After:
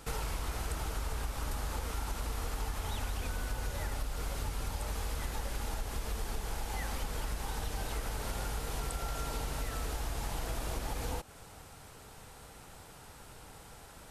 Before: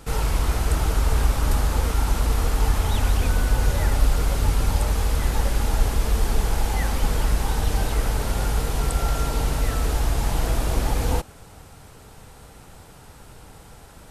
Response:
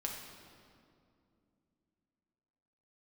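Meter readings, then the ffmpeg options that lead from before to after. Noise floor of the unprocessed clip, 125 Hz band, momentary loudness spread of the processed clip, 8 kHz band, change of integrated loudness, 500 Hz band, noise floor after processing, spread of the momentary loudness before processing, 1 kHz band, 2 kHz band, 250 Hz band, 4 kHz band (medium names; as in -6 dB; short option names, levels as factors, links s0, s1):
-47 dBFS, -16.0 dB, 14 LU, -10.0 dB, -14.5 dB, -12.5 dB, -53 dBFS, 2 LU, -11.0 dB, -10.5 dB, -14.5 dB, -10.5 dB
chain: -af "lowshelf=f=430:g=-5.5,acompressor=threshold=0.0355:ratio=6,volume=0.668"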